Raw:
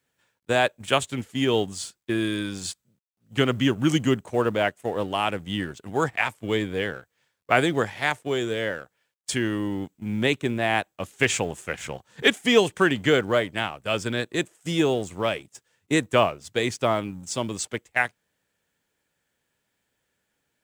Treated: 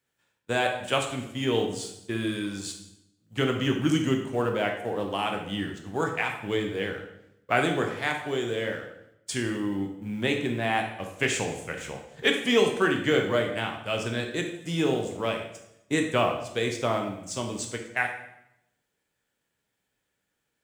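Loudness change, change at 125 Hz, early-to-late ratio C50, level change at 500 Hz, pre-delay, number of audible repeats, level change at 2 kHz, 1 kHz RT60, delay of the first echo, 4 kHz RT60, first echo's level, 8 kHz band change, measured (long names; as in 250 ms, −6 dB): −3.0 dB, −2.5 dB, 6.5 dB, −3.0 dB, 9 ms, no echo audible, −3.0 dB, 0.75 s, no echo audible, 0.70 s, no echo audible, −3.5 dB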